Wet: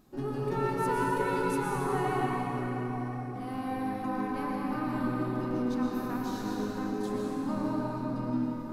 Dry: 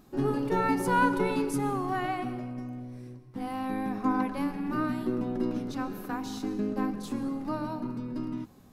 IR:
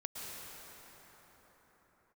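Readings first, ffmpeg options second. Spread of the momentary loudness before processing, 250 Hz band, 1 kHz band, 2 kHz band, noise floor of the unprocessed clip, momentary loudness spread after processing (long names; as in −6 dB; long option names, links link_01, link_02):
12 LU, −1.5 dB, −1.0 dB, −2.5 dB, −54 dBFS, 5 LU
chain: -filter_complex "[0:a]bandreject=frequency=93.16:width_type=h:width=4,bandreject=frequency=186.32:width_type=h:width=4,bandreject=frequency=279.48:width_type=h:width=4,bandreject=frequency=372.64:width_type=h:width=4,bandreject=frequency=465.8:width_type=h:width=4,bandreject=frequency=558.96:width_type=h:width=4,bandreject=frequency=652.12:width_type=h:width=4,bandreject=frequency=745.28:width_type=h:width=4,bandreject=frequency=838.44:width_type=h:width=4,bandreject=frequency=931.6:width_type=h:width=4,bandreject=frequency=1024.76:width_type=h:width=4,bandreject=frequency=1117.92:width_type=h:width=4,bandreject=frequency=1211.08:width_type=h:width=4,bandreject=frequency=1304.24:width_type=h:width=4,bandreject=frequency=1397.4:width_type=h:width=4,bandreject=frequency=1490.56:width_type=h:width=4,bandreject=frequency=1583.72:width_type=h:width=4,bandreject=frequency=1676.88:width_type=h:width=4,bandreject=frequency=1770.04:width_type=h:width=4,bandreject=frequency=1863.2:width_type=h:width=4,bandreject=frequency=1956.36:width_type=h:width=4,bandreject=frequency=2049.52:width_type=h:width=4,bandreject=frequency=2142.68:width_type=h:width=4,bandreject=frequency=2235.84:width_type=h:width=4,bandreject=frequency=2329:width_type=h:width=4,bandreject=frequency=2422.16:width_type=h:width=4,bandreject=frequency=2515.32:width_type=h:width=4,bandreject=frequency=2608.48:width_type=h:width=4,bandreject=frequency=2701.64:width_type=h:width=4,bandreject=frequency=2794.8:width_type=h:width=4,bandreject=frequency=2887.96:width_type=h:width=4,aeval=exprs='clip(val(0),-1,0.1)':channel_layout=same,alimiter=limit=-21dB:level=0:latency=1:release=318[link_01];[1:a]atrim=start_sample=2205[link_02];[link_01][link_02]afir=irnorm=-1:irlink=0"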